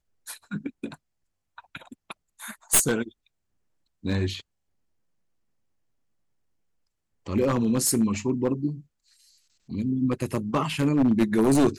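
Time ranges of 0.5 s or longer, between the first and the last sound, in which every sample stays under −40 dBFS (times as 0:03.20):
0:00.95–0:01.58
0:03.09–0:04.04
0:04.41–0:07.26
0:08.81–0:09.69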